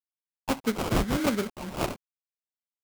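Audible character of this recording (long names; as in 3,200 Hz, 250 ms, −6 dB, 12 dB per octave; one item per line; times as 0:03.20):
a quantiser's noise floor 8 bits, dither none
phaser sweep stages 4, 0.74 Hz, lowest notch 730–4,400 Hz
aliases and images of a low sample rate 1,800 Hz, jitter 20%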